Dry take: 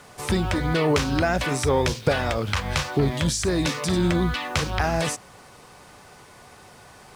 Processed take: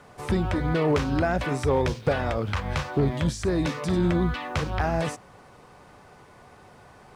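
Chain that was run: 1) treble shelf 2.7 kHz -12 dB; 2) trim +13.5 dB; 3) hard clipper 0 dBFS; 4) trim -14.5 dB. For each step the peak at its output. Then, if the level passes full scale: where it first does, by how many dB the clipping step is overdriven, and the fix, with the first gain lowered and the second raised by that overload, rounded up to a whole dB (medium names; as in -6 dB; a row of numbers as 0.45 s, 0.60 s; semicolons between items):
-8.5 dBFS, +5.0 dBFS, 0.0 dBFS, -14.5 dBFS; step 2, 5.0 dB; step 2 +8.5 dB, step 4 -9.5 dB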